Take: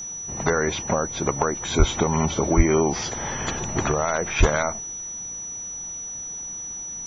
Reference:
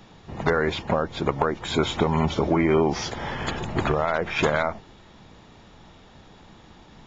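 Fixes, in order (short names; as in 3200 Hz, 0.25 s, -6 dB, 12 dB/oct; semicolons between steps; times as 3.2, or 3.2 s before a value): notch 5900 Hz, Q 30; 1.78–1.9 HPF 140 Hz 24 dB/oct; 2.56–2.68 HPF 140 Hz 24 dB/oct; 4.39–4.51 HPF 140 Hz 24 dB/oct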